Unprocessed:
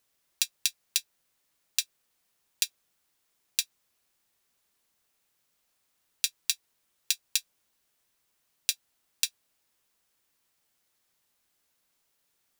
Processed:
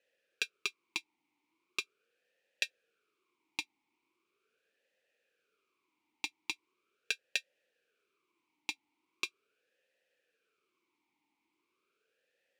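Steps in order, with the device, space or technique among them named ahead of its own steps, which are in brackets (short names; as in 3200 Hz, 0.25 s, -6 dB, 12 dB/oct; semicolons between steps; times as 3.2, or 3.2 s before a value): talk box (tube stage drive 7 dB, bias 0.3; vowel sweep e-u 0.4 Hz); gain +14.5 dB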